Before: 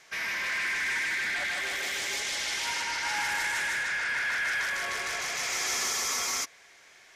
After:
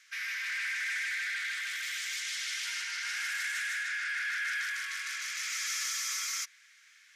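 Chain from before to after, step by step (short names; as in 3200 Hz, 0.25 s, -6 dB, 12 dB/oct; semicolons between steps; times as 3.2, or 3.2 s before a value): steep high-pass 1300 Hz 48 dB/oct; gain -4 dB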